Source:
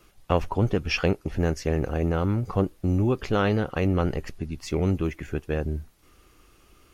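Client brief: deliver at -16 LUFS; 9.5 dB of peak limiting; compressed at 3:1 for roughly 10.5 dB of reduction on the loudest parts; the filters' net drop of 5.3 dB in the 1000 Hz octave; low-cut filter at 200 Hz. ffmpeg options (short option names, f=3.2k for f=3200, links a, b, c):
-af "highpass=200,equalizer=f=1k:t=o:g=-7.5,acompressor=threshold=-35dB:ratio=3,volume=24.5dB,alimiter=limit=-3dB:level=0:latency=1"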